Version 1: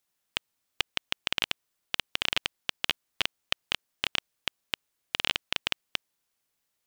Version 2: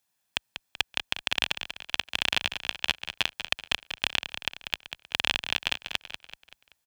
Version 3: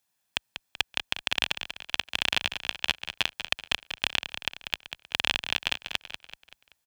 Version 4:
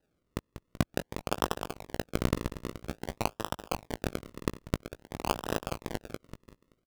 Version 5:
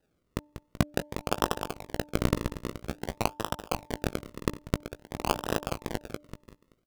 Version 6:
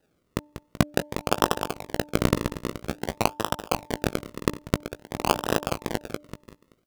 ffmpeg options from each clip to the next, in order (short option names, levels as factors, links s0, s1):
-filter_complex "[0:a]highpass=44,aecho=1:1:1.2:0.35,asplit=6[s0][s1][s2][s3][s4][s5];[s1]adelay=191,afreqshift=-31,volume=0.335[s6];[s2]adelay=382,afreqshift=-62,volume=0.151[s7];[s3]adelay=573,afreqshift=-93,volume=0.0676[s8];[s4]adelay=764,afreqshift=-124,volume=0.0305[s9];[s5]adelay=955,afreqshift=-155,volume=0.0138[s10];[s0][s6][s7][s8][s9][s10]amix=inputs=6:normalize=0,volume=1.19"
-af anull
-filter_complex "[0:a]acrossover=split=770|2200[s0][s1][s2];[s2]alimiter=limit=0.119:level=0:latency=1:release=154[s3];[s0][s1][s3]amix=inputs=3:normalize=0,acrusher=samples=39:mix=1:aa=0.000001:lfo=1:lforange=39:lforate=0.5,asplit=2[s4][s5];[s5]adelay=18,volume=0.282[s6];[s4][s6]amix=inputs=2:normalize=0"
-af "bandreject=f=296.9:t=h:w=4,bandreject=f=593.8:t=h:w=4,bandreject=f=890.7:t=h:w=4,volume=1.33"
-af "lowshelf=f=72:g=-8,volume=1.88"